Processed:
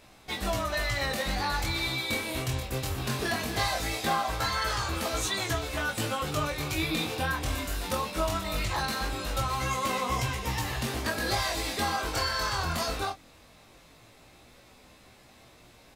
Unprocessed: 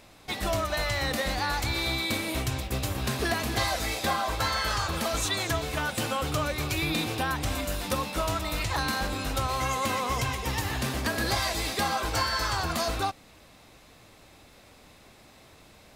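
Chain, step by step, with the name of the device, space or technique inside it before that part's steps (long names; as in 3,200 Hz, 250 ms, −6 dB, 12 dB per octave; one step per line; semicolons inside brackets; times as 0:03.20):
double-tracked vocal (double-tracking delay 25 ms −8.5 dB; chorus effect 0.2 Hz, delay 15.5 ms, depth 7.7 ms)
level +1 dB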